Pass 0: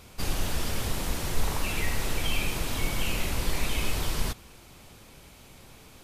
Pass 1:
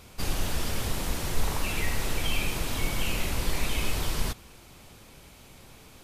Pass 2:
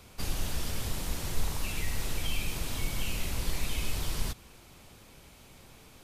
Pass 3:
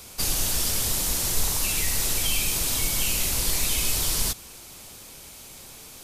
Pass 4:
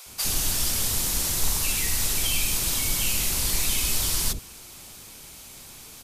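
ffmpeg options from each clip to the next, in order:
-af anull
-filter_complex "[0:a]acrossover=split=200|3000[s0][s1][s2];[s1]acompressor=threshold=0.0126:ratio=6[s3];[s0][s3][s2]amix=inputs=3:normalize=0,volume=0.708"
-af "bass=f=250:g=-4,treble=f=4000:g=11,volume=2"
-filter_complex "[0:a]acrossover=split=540[s0][s1];[s0]adelay=60[s2];[s2][s1]amix=inputs=2:normalize=0"

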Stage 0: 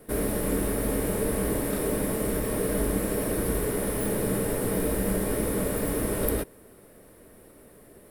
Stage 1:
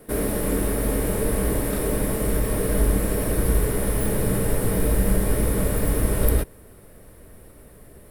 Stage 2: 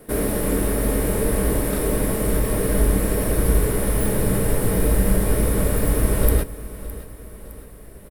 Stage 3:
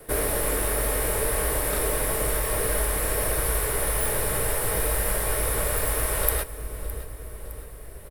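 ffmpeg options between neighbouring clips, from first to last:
-af "asubboost=boost=3:cutoff=140,volume=1.41"
-af "aecho=1:1:612|1224|1836|2448:0.15|0.0733|0.0359|0.0176,volume=1.26"
-filter_complex "[0:a]equalizer=f=220:w=1.4:g=-13.5,acrossover=split=560|910[s0][s1][s2];[s0]acompressor=threshold=0.0398:ratio=5[s3];[s3][s1][s2]amix=inputs=3:normalize=0,volume=1.26"

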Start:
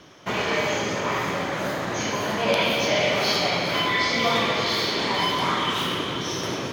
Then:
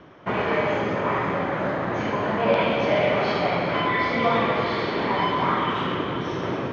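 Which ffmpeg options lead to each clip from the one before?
-af "lowpass=1800,volume=1.33"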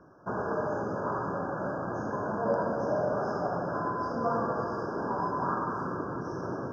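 -af "afftfilt=real='re*(1-between(b*sr/4096,1700,4800))':imag='im*(1-between(b*sr/4096,1700,4800))':win_size=4096:overlap=0.75,volume=0.422"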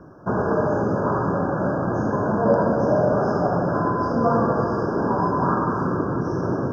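-af "lowshelf=f=430:g=8,volume=2.11"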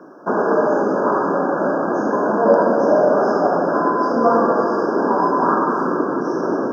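-af "highpass=f=240:w=0.5412,highpass=f=240:w=1.3066,volume=1.88"

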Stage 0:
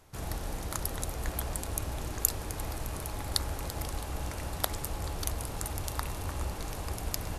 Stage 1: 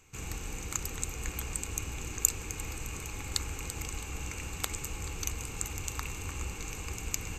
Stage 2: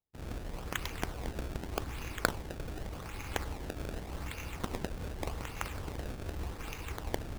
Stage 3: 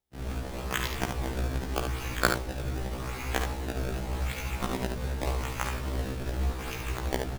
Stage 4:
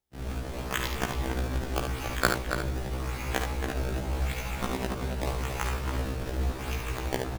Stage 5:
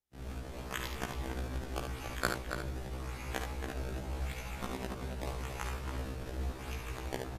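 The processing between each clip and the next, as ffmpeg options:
-af "superequalizer=8b=0.282:9b=0.631:12b=3.16:15b=3.16:16b=0.316,volume=0.708"
-af "agate=range=0.0224:threshold=0.0141:ratio=3:detection=peak,acrusher=samples=25:mix=1:aa=0.000001:lfo=1:lforange=40:lforate=0.85,volume=0.841"
-filter_complex "[0:a]asplit=2[s0][s1];[s1]aecho=0:1:49|73:0.266|0.501[s2];[s0][s2]amix=inputs=2:normalize=0,afftfilt=real='re*1.73*eq(mod(b,3),0)':imag='im*1.73*eq(mod(b,3),0)':win_size=2048:overlap=0.75,volume=2.51"
-filter_complex "[0:a]asplit=2[s0][s1];[s1]adelay=279.9,volume=0.501,highshelf=f=4000:g=-6.3[s2];[s0][s2]amix=inputs=2:normalize=0"
-af "volume=0.398" -ar 32000 -c:a wmav2 -b:a 128k

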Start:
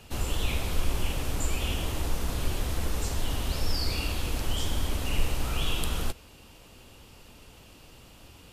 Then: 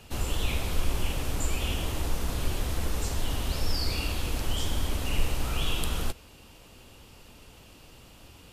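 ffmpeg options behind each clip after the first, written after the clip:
-af anull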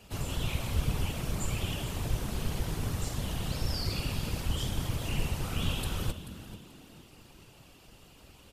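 -filter_complex "[0:a]asplit=4[s0][s1][s2][s3];[s1]adelay=435,afreqshift=100,volume=0.2[s4];[s2]adelay=870,afreqshift=200,volume=0.0661[s5];[s3]adelay=1305,afreqshift=300,volume=0.0216[s6];[s0][s4][s5][s6]amix=inputs=4:normalize=0,afftfilt=real='hypot(re,im)*cos(2*PI*random(0))':imag='hypot(re,im)*sin(2*PI*random(1))':win_size=512:overlap=0.75,volume=1.26"

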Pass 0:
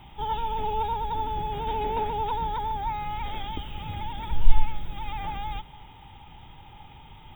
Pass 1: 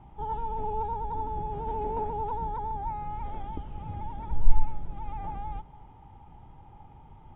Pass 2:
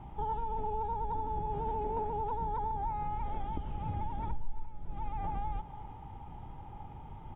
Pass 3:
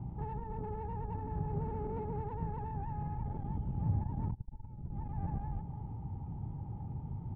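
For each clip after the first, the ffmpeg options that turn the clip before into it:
-af "lowpass=1000,volume=0.794"
-af "acompressor=threshold=0.0178:ratio=6,aecho=1:1:346:0.15,volume=1.58"
-af "asoftclip=type=tanh:threshold=0.0224,bandpass=f=130:t=q:w=1.2:csg=0,volume=3.76"

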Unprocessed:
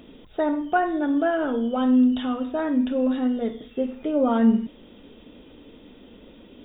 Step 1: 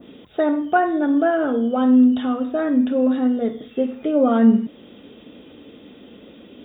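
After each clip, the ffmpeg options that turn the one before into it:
-af "highpass=100,bandreject=f=940:w=11,adynamicequalizer=threshold=0.00316:dfrequency=3000:dqfactor=1.1:tfrequency=3000:tqfactor=1.1:attack=5:release=100:ratio=0.375:range=3:mode=cutabove:tftype=bell,volume=1.68"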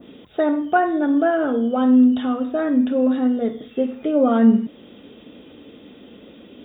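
-af anull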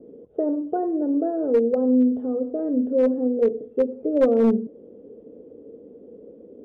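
-af "lowpass=f=470:t=q:w=5.5,aeval=exprs='clip(val(0),-1,0.596)':c=same,volume=0.398"

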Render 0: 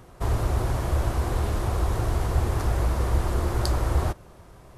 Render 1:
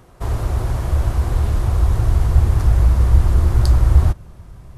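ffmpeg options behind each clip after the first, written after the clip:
-af "asubboost=boost=4:cutoff=210,volume=1.12"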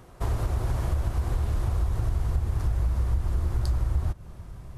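-af "acompressor=threshold=0.1:ratio=5,volume=0.75"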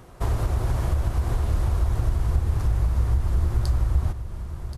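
-af "aecho=1:1:1078:0.282,volume=1.41"

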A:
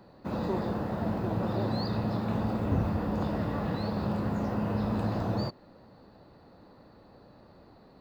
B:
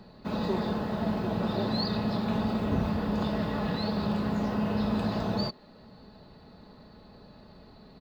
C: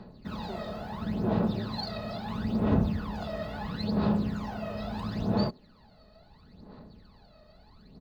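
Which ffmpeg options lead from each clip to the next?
-filter_complex "[0:a]equalizer=f=3700:w=1:g=8,aecho=1:1:4.7:0.43,acrossover=split=190[s0][s1];[s0]acompressor=mode=upward:threshold=0.00447:ratio=2.5[s2];[s2][s1]amix=inputs=2:normalize=0"
-af "aphaser=in_gain=1:out_gain=1:delay=1.6:decay=0.71:speed=0.74:type=sinusoidal,volume=0.447"

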